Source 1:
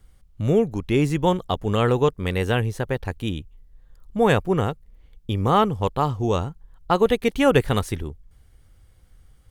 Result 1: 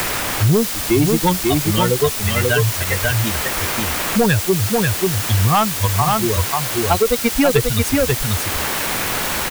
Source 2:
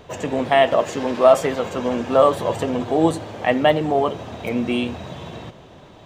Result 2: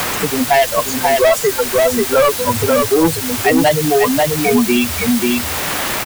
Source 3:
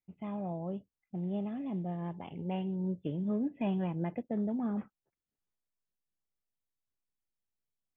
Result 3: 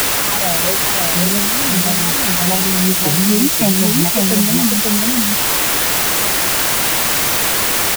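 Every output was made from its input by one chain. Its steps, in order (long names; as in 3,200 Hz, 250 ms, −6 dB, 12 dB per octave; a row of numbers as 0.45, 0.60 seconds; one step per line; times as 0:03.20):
spectral dynamics exaggerated over time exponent 3
noise reduction from a noise print of the clip's start 9 dB
in parallel at −3 dB: downward compressor, threshold −29 dBFS
on the sum: bit-depth reduction 6 bits, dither triangular
soft clipping −18 dBFS
on a send: single-tap delay 539 ms −4.5 dB
on the sum: multiband upward and downward compressor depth 70%
normalise the peak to −1.5 dBFS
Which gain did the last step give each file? +10.5, +12.0, +18.0 decibels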